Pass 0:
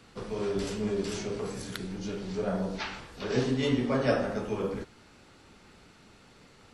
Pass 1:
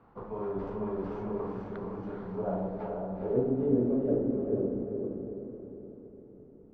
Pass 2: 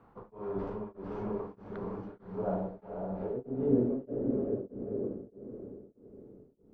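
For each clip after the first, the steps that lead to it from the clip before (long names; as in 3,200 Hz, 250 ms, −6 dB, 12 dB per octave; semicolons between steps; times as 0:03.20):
low-pass filter sweep 980 Hz → 360 Hz, 0:02.28–0:03.76; feedback delay with all-pass diffusion 450 ms, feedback 47%, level −3 dB; level −5 dB
tremolo along a rectified sine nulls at 1.6 Hz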